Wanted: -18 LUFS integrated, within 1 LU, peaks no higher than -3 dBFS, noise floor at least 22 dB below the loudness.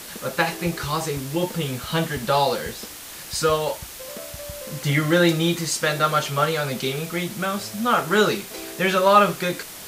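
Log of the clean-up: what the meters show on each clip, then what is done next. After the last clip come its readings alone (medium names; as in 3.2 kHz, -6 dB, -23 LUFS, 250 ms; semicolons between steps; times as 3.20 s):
noise floor -38 dBFS; noise floor target -44 dBFS; loudness -22.0 LUFS; peak level -3.0 dBFS; loudness target -18.0 LUFS
-> noise reduction 6 dB, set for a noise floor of -38 dBFS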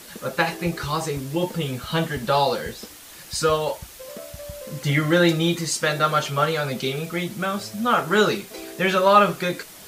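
noise floor -43 dBFS; noise floor target -45 dBFS
-> noise reduction 6 dB, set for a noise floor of -43 dBFS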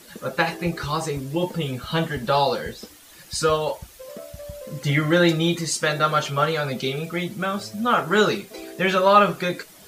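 noise floor -48 dBFS; loudness -22.5 LUFS; peak level -3.0 dBFS; loudness target -18.0 LUFS
-> trim +4.5 dB; peak limiter -3 dBFS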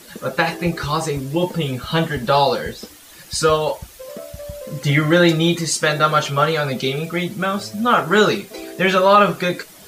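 loudness -18.0 LUFS; peak level -3.0 dBFS; noise floor -43 dBFS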